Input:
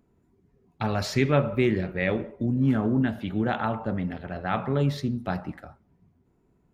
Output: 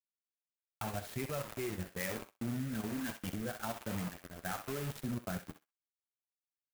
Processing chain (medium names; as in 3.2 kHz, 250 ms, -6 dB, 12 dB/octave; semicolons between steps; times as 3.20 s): expander on every frequency bin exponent 1.5; low-pass 4.1 kHz 24 dB/octave; bass shelf 440 Hz -8 dB; compression 10:1, threshold -34 dBFS, peak gain reduction 13 dB; bit crusher 7-bit; rotary cabinet horn 1.2 Hz; level held to a coarse grid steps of 11 dB; flange 0.79 Hz, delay 7.8 ms, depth 4.6 ms, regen -34%; on a send: thinning echo 64 ms, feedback 18%, high-pass 830 Hz, level -8 dB; on the sum: sampling jitter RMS 0.057 ms; trim +10 dB